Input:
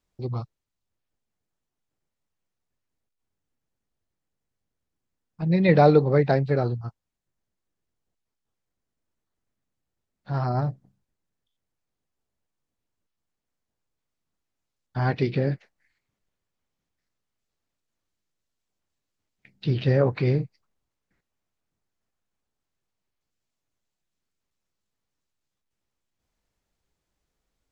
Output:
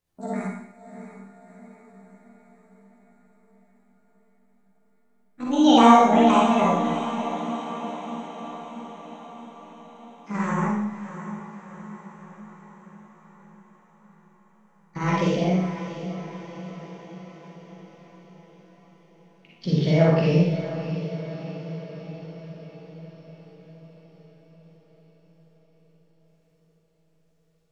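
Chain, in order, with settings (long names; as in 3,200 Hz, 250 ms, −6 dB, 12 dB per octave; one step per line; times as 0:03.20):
pitch glide at a constant tempo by +10 semitones ending unshifted
feedback delay with all-pass diffusion 654 ms, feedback 60%, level −11 dB
four-comb reverb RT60 0.82 s, DRR −4.5 dB
level −2 dB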